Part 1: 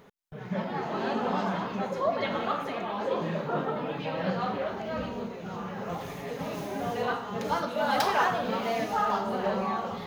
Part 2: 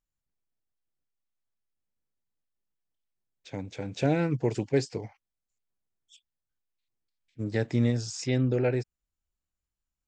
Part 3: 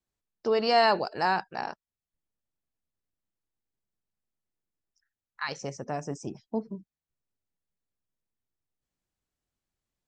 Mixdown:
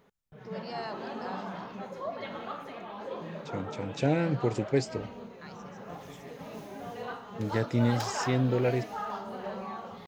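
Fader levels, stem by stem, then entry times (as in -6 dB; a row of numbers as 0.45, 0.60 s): -9.0, -1.0, -17.0 dB; 0.00, 0.00, 0.00 s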